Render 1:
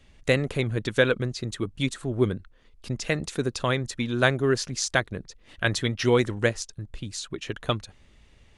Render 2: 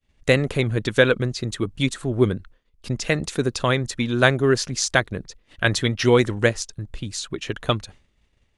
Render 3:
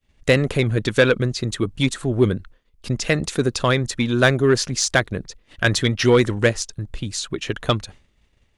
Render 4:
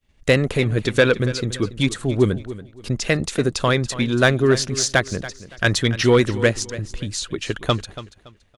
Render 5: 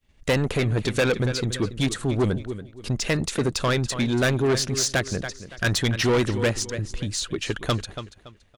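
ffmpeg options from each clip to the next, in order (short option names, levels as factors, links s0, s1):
-af "agate=range=0.0224:threshold=0.00631:ratio=3:detection=peak,volume=1.68"
-af "acontrast=66,volume=0.668"
-af "aecho=1:1:283|566|849:0.178|0.048|0.013"
-af "asoftclip=type=tanh:threshold=0.15"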